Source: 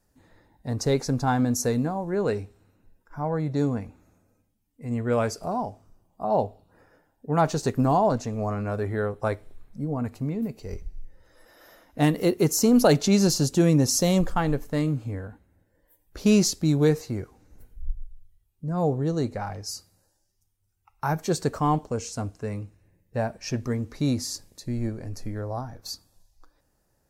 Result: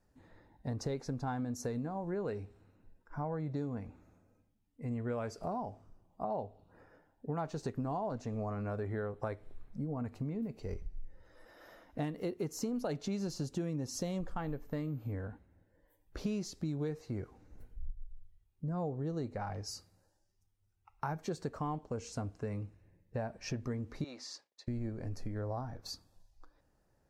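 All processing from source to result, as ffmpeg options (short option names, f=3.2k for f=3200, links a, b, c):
-filter_complex "[0:a]asettb=1/sr,asplit=3[a][b][c];[a]atrim=end=14.414[d];[b]atrim=start=14.41:end=15.12,asetpts=PTS-STARTPTS,afade=t=in:d=0.004:c=qsin,afade=t=out:st=0.706:d=0.004:c=qsin,aeval=exprs='val(0)+0.00447*sin(2*PI*14000*n/s)':c=same,highshelf=f=5.5k:g=-4[e];[c]atrim=start=15.116[f];[d][e]acrossfade=d=0.004:c1=hsin:c2=qsin[g];[g][f]acrossfade=d=0.004:c1=qsin:c2=hsin,asettb=1/sr,asplit=3[h][i][j];[h]atrim=end=24.044[k];[i]atrim=start=24.04:end=24.68,asetpts=PTS-STARTPTS,afade=t=in:d=0.004:c=qsin,afade=t=out:st=0.636:d=0.004:c=qsin,agate=range=-33dB:threshold=-45dB:ratio=3:release=100:detection=peak,highpass=690,lowpass=4.8k[l];[j]atrim=start=24.676[m];[k][l]acrossfade=d=0.004:c1=hsin:c2=qsin[n];[n][m]acrossfade=d=0.004:c1=qsin:c2=hsin,lowpass=f=2.9k:p=1,acompressor=threshold=-32dB:ratio=6,volume=-2.5dB"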